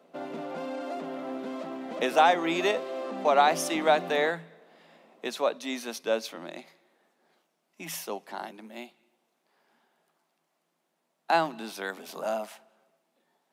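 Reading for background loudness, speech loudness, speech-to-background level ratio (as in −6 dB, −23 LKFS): −36.5 LKFS, −28.0 LKFS, 8.5 dB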